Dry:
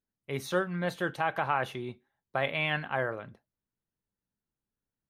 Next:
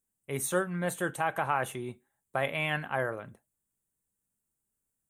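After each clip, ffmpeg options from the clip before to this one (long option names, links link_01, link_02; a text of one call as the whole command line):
ffmpeg -i in.wav -af "highshelf=frequency=6300:width_type=q:width=3:gain=10" out.wav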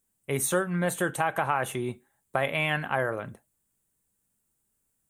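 ffmpeg -i in.wav -af "acompressor=threshold=-33dB:ratio=2,volume=7.5dB" out.wav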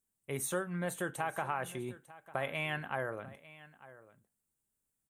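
ffmpeg -i in.wav -af "aecho=1:1:898:0.119,volume=-9dB" out.wav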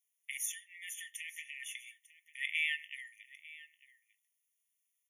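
ffmpeg -i in.wav -af "afftfilt=real='re*eq(mod(floor(b*sr/1024/1800),2),1)':imag='im*eq(mod(floor(b*sr/1024/1800),2),1)':win_size=1024:overlap=0.75,volume=5.5dB" out.wav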